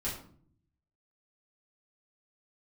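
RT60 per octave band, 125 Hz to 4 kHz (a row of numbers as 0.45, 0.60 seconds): 1.1, 0.90, 0.60, 0.50, 0.40, 0.35 seconds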